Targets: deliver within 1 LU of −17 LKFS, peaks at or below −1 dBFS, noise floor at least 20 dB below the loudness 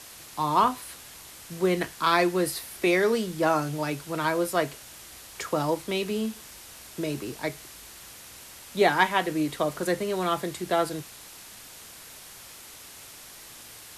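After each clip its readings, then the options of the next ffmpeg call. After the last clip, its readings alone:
background noise floor −46 dBFS; target noise floor −47 dBFS; integrated loudness −26.5 LKFS; sample peak −8.0 dBFS; target loudness −17.0 LKFS
→ -af "afftdn=noise_reduction=6:noise_floor=-46"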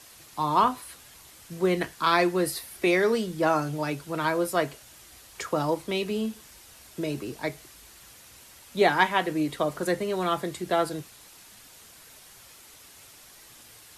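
background noise floor −51 dBFS; integrated loudness −26.5 LKFS; sample peak −8.0 dBFS; target loudness −17.0 LKFS
→ -af "volume=9.5dB,alimiter=limit=-1dB:level=0:latency=1"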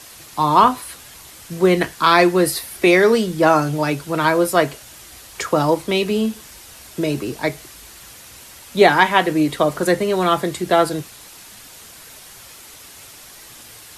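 integrated loudness −17.5 LKFS; sample peak −1.0 dBFS; background noise floor −42 dBFS

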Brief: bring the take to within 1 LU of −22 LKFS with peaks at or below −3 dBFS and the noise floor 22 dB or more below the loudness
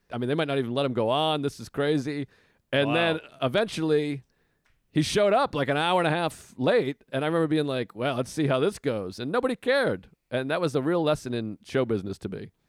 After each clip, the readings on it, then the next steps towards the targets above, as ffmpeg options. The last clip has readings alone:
integrated loudness −26.5 LKFS; sample peak −13.0 dBFS; target loudness −22.0 LKFS
→ -af "volume=4.5dB"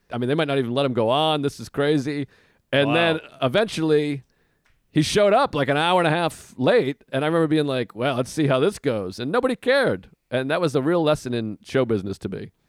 integrated loudness −22.0 LKFS; sample peak −8.5 dBFS; background noise floor −68 dBFS

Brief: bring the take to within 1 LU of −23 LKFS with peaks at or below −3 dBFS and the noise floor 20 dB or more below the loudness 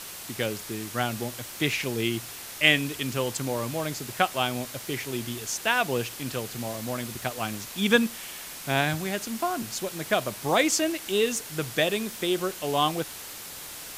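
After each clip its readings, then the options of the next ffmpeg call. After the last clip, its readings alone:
background noise floor −40 dBFS; target noise floor −48 dBFS; integrated loudness −27.5 LKFS; sample peak −3.5 dBFS; target loudness −23.0 LKFS
→ -af "afftdn=noise_reduction=8:noise_floor=-40"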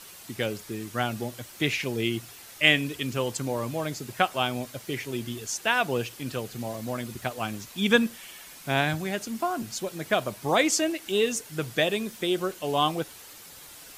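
background noise floor −47 dBFS; target noise floor −48 dBFS
→ -af "afftdn=noise_reduction=6:noise_floor=-47"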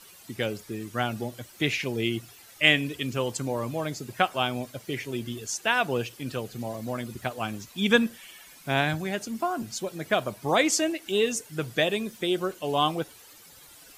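background noise floor −51 dBFS; integrated loudness −28.0 LKFS; sample peak −3.0 dBFS; target loudness −23.0 LKFS
→ -af "volume=5dB,alimiter=limit=-3dB:level=0:latency=1"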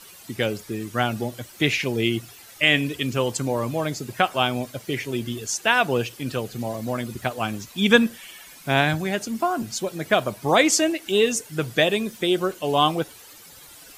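integrated loudness −23.0 LKFS; sample peak −3.0 dBFS; background noise floor −46 dBFS

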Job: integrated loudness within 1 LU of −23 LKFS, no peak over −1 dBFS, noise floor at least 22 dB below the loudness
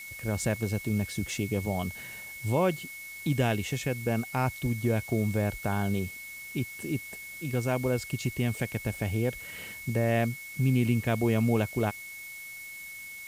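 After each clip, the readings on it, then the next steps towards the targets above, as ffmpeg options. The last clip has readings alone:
interfering tone 2,200 Hz; level of the tone −41 dBFS; background noise floor −43 dBFS; target noise floor −53 dBFS; integrated loudness −30.5 LKFS; sample peak −14.0 dBFS; target loudness −23.0 LKFS
→ -af "bandreject=frequency=2200:width=30"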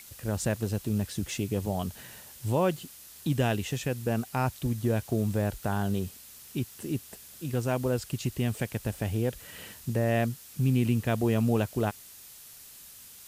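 interfering tone none found; background noise floor −49 dBFS; target noise floor −52 dBFS
→ -af "afftdn=noise_reduction=6:noise_floor=-49"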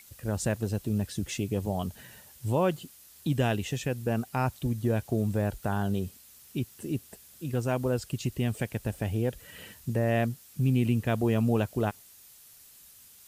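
background noise floor −54 dBFS; integrated loudness −30.0 LKFS; sample peak −14.5 dBFS; target loudness −23.0 LKFS
→ -af "volume=7dB"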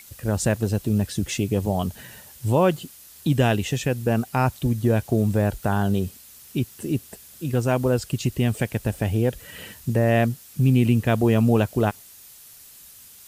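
integrated loudness −23.0 LKFS; sample peak −7.5 dBFS; background noise floor −47 dBFS

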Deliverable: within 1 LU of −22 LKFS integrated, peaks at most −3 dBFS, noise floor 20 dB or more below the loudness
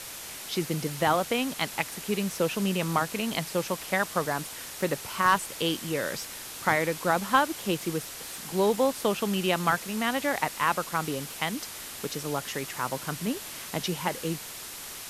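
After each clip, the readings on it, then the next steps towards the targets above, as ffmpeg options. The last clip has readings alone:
background noise floor −41 dBFS; target noise floor −49 dBFS; integrated loudness −29.0 LKFS; sample peak −8.0 dBFS; target loudness −22.0 LKFS
→ -af "afftdn=noise_reduction=8:noise_floor=-41"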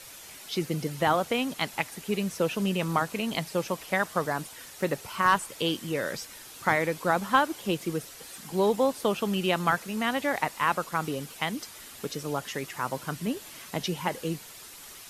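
background noise floor −46 dBFS; target noise floor −49 dBFS
→ -af "afftdn=noise_reduction=6:noise_floor=-46"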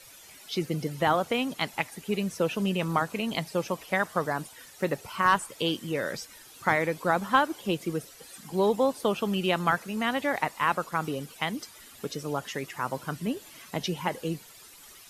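background noise floor −51 dBFS; integrated loudness −29.0 LKFS; sample peak −8.0 dBFS; target loudness −22.0 LKFS
→ -af "volume=7dB,alimiter=limit=-3dB:level=0:latency=1"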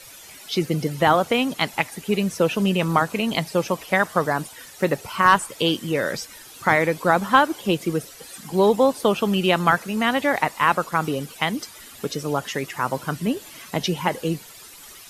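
integrated loudness −22.0 LKFS; sample peak −3.0 dBFS; background noise floor −44 dBFS

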